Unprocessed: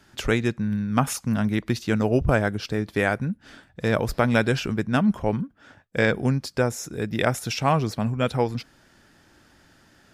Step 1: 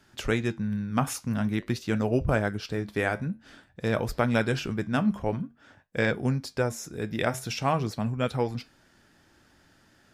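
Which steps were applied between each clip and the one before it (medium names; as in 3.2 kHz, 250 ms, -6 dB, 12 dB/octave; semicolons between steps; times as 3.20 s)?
flange 0.49 Hz, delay 7.7 ms, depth 5.1 ms, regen -75%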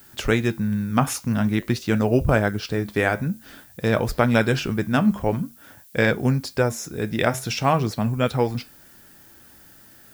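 added noise violet -57 dBFS; trim +6 dB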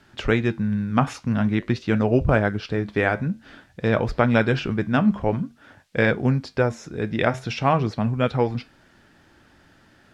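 low-pass 3.6 kHz 12 dB/octave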